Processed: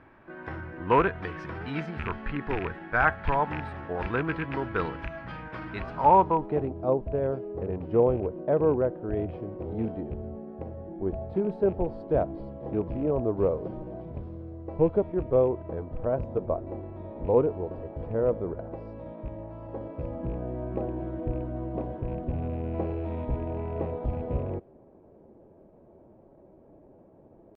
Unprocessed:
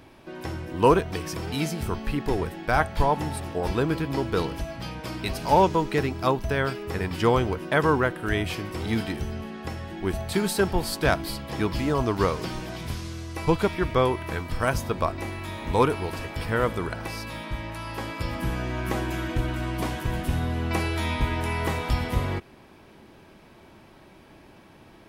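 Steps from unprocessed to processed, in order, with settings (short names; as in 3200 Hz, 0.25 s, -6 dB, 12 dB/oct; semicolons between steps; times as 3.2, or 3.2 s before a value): rattling part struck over -26 dBFS, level -18 dBFS; dynamic EQ 3500 Hz, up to +5 dB, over -46 dBFS, Q 1.1; low-pass sweep 1600 Hz -> 560 Hz, 5.2–6.16; tempo 0.91×; gain -5.5 dB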